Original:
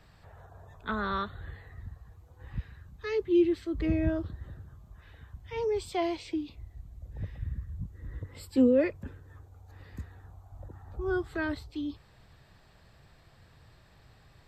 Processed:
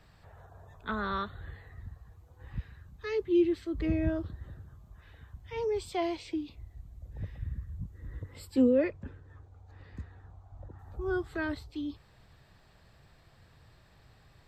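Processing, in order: 8.78–10.79 air absorption 79 m; gain -1.5 dB

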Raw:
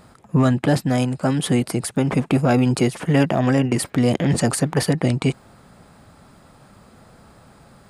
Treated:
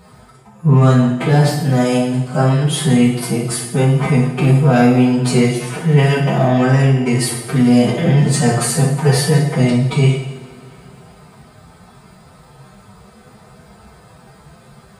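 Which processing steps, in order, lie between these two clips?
notch comb 280 Hz; time stretch by phase-locked vocoder 1.9×; two-slope reverb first 0.72 s, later 2.9 s, from -18 dB, DRR -2 dB; in parallel at -12 dB: hard clip -15.5 dBFS, distortion -9 dB; on the sum: gain +1.5 dB

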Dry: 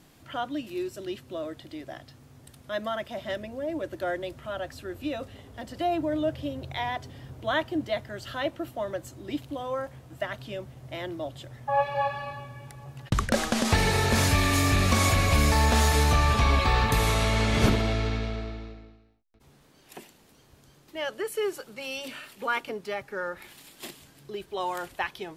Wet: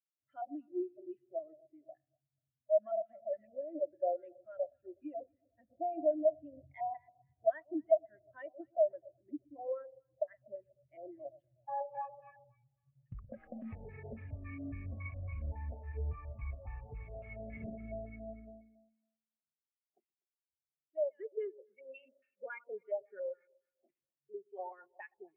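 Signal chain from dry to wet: compressor 6:1, threshold -27 dBFS, peak gain reduction 11 dB; on a send: analogue delay 0.122 s, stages 4096, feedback 67%, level -10.5 dB; on the sum: LFO low-pass square 3.6 Hz 670–2300 Hz; spectral expander 2.5:1; gain -3 dB

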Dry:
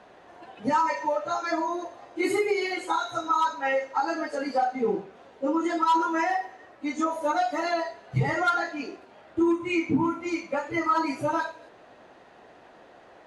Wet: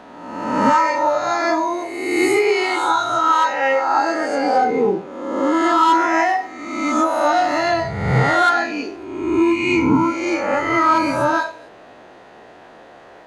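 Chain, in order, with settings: spectral swells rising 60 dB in 1.19 s; gain +6 dB

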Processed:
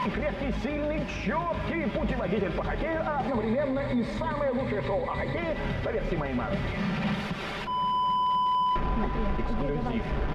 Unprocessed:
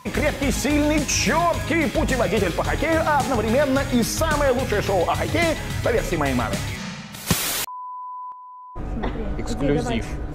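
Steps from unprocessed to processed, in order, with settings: delta modulation 64 kbps, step -25.5 dBFS; compressor 5:1, threshold -29 dBFS, peak gain reduction 13 dB; 3.28–5.37 ripple EQ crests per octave 1, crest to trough 11 dB; darkening echo 0.259 s, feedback 82%, low-pass 2100 Hz, level -15.5 dB; limiter -23.5 dBFS, peak gain reduction 8 dB; air absorption 360 m; notch 4100 Hz, Q 20; comb 5.1 ms, depth 46%; gain +4.5 dB

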